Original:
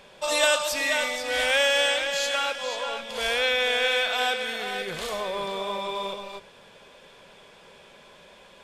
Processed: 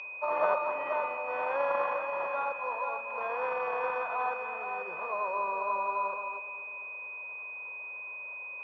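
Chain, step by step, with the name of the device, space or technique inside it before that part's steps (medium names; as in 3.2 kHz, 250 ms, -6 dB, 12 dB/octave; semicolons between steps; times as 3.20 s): toy sound module (decimation joined by straight lines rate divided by 6×; class-D stage that switches slowly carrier 2.5 kHz; cabinet simulation 720–4500 Hz, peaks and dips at 800 Hz -5 dB, 1.6 kHz -6 dB, 2.5 kHz -7 dB, 4.2 kHz -5 dB); fifteen-band graphic EQ 160 Hz +5 dB, 1 kHz +9 dB, 6.3 kHz +11 dB; filtered feedback delay 248 ms, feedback 60%, low-pass 1.7 kHz, level -13 dB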